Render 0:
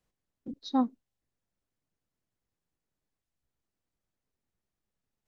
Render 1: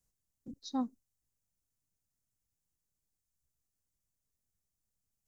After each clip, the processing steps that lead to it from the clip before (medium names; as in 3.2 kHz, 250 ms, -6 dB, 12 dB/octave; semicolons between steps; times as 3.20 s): FFT filter 100 Hz 0 dB, 320 Hz -9 dB, 3.4 kHz -9 dB, 6.5 kHz +6 dB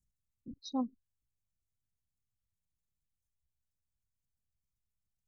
resonances exaggerated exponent 2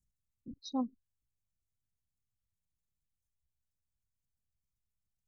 no audible change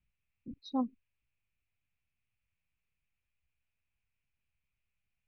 resonant low-pass 2.5 kHz, resonance Q 6.7; trim +1.5 dB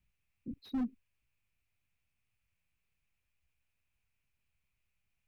slew-rate limiter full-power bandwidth 5.6 Hz; trim +3 dB